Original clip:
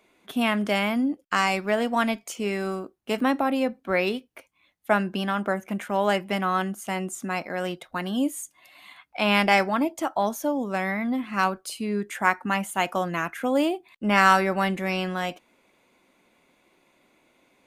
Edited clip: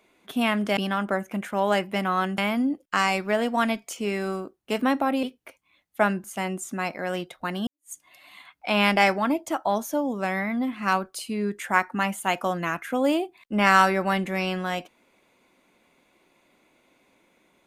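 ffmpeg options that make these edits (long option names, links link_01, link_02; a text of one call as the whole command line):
ffmpeg -i in.wav -filter_complex "[0:a]asplit=6[link_01][link_02][link_03][link_04][link_05][link_06];[link_01]atrim=end=0.772[link_07];[link_02]atrim=start=5.138:end=6.752[link_08];[link_03]atrim=start=0.768:end=3.622[link_09];[link_04]atrim=start=4.128:end=5.142[link_10];[link_05]atrim=start=6.748:end=8.18,asetpts=PTS-STARTPTS,afade=type=out:start_time=1.428:duration=0.004:curve=hsin[link_11];[link_06]atrim=start=8.18,asetpts=PTS-STARTPTS,afade=type=in:duration=0.25:curve=exp[link_12];[link_07][link_08]acrossfade=duration=0.004:curve1=hsin:curve2=hsin[link_13];[link_13][link_09]acrossfade=duration=0.004:curve1=hsin:curve2=hsin[link_14];[link_14][link_10]acrossfade=duration=0.004:curve1=hsin:curve2=hsin[link_15];[link_11][link_12]concat=n=2:v=0:a=1[link_16];[link_15][link_16]acrossfade=duration=0.004:curve1=hsin:curve2=hsin" out.wav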